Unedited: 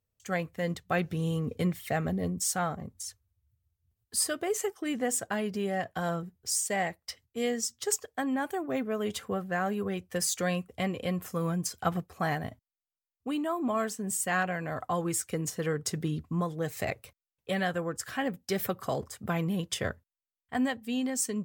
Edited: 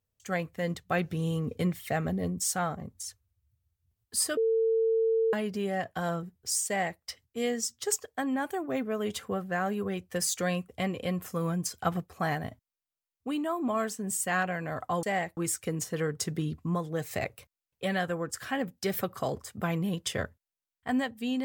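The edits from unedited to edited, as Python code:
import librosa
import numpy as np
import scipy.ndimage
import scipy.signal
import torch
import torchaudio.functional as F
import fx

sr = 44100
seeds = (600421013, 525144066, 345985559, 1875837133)

y = fx.edit(x, sr, fx.bleep(start_s=4.37, length_s=0.96, hz=450.0, db=-22.5),
    fx.duplicate(start_s=6.67, length_s=0.34, to_s=15.03), tone=tone)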